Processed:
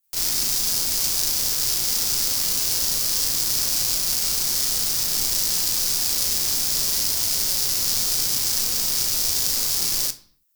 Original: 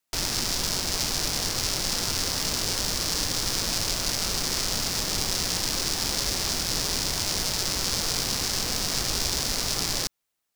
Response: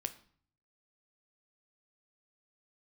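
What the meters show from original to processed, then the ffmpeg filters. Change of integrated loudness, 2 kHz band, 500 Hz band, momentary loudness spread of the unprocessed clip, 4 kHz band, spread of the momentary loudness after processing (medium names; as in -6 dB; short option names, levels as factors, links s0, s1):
+6.0 dB, -3.0 dB, -5.5 dB, 1 LU, +2.0 dB, 1 LU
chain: -filter_complex "[0:a]aemphasis=mode=production:type=75fm,asplit=2[s0][s1];[1:a]atrim=start_sample=2205,afade=t=out:st=0.38:d=0.01,atrim=end_sample=17199,adelay=35[s2];[s1][s2]afir=irnorm=-1:irlink=0,volume=1.58[s3];[s0][s3]amix=inputs=2:normalize=0,volume=0.316"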